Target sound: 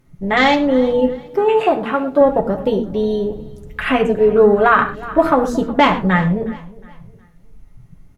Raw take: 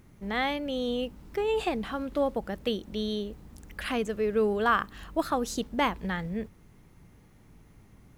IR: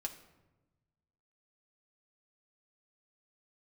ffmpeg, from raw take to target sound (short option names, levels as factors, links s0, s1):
-filter_complex "[0:a]afwtdn=0.0141,asettb=1/sr,asplit=3[s0][s1][s2];[s0]atrim=end=1.124[s3];[s1]atrim=start=1.12:end=2.21,asetpts=PTS-STARTPTS,afade=t=in:d=0.004:c=qsin,afade=t=out:st=1.086:d=0.004:c=qsin,highpass=f=300:p=1[s4];[s2]atrim=start=2.206[s5];[s3][s4]acrossfade=d=0.004:c1=hsin:c2=qsin[s6];[s6][s5]acrossfade=d=0.004:c1=qsin:c2=hsin,aecho=1:1:363|726|1089:0.0891|0.0312|0.0109[s7];[1:a]atrim=start_sample=2205,atrim=end_sample=4410,asetrate=33516,aresample=44100[s8];[s7][s8]afir=irnorm=-1:irlink=0,alimiter=level_in=6.68:limit=0.891:release=50:level=0:latency=1,volume=0.891"